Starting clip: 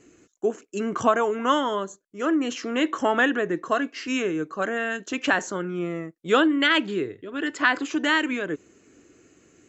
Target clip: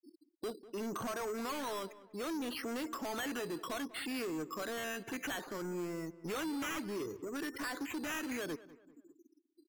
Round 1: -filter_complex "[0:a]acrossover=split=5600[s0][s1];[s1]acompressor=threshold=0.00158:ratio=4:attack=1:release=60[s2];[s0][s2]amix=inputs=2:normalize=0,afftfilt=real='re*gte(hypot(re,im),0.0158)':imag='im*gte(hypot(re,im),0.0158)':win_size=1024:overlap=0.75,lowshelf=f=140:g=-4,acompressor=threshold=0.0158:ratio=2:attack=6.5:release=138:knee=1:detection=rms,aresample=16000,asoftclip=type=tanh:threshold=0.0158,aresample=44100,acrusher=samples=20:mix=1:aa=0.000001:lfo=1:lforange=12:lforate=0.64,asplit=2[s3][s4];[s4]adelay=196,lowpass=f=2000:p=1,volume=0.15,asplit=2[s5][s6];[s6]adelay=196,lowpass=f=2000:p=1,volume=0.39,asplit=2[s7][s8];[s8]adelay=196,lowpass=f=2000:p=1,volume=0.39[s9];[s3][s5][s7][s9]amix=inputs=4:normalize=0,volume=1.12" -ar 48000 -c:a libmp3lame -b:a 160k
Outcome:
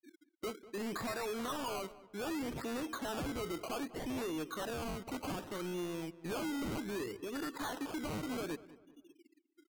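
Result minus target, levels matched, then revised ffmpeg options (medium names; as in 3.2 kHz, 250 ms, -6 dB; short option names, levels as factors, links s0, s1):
decimation with a swept rate: distortion +6 dB
-filter_complex "[0:a]acrossover=split=5600[s0][s1];[s1]acompressor=threshold=0.00158:ratio=4:attack=1:release=60[s2];[s0][s2]amix=inputs=2:normalize=0,afftfilt=real='re*gte(hypot(re,im),0.0158)':imag='im*gte(hypot(re,im),0.0158)':win_size=1024:overlap=0.75,lowshelf=f=140:g=-4,acompressor=threshold=0.0158:ratio=2:attack=6.5:release=138:knee=1:detection=rms,aresample=16000,asoftclip=type=tanh:threshold=0.0158,aresample=44100,acrusher=samples=8:mix=1:aa=0.000001:lfo=1:lforange=4.8:lforate=0.64,asplit=2[s3][s4];[s4]adelay=196,lowpass=f=2000:p=1,volume=0.15,asplit=2[s5][s6];[s6]adelay=196,lowpass=f=2000:p=1,volume=0.39,asplit=2[s7][s8];[s8]adelay=196,lowpass=f=2000:p=1,volume=0.39[s9];[s3][s5][s7][s9]amix=inputs=4:normalize=0,volume=1.12" -ar 48000 -c:a libmp3lame -b:a 160k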